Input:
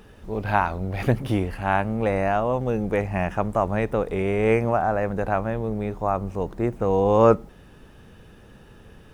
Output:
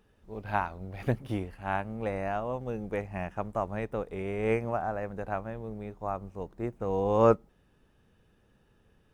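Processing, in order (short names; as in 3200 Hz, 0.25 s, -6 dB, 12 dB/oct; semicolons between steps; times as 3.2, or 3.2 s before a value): upward expander 1.5:1, over -37 dBFS; gain -5 dB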